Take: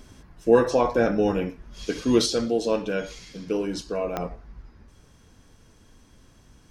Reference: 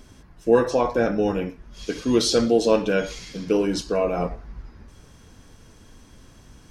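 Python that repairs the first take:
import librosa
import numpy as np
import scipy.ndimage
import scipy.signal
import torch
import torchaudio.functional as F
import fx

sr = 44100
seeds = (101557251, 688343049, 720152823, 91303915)

y = fx.fix_declick_ar(x, sr, threshold=10.0)
y = fx.gain(y, sr, db=fx.steps((0.0, 0.0), (2.26, 5.5)))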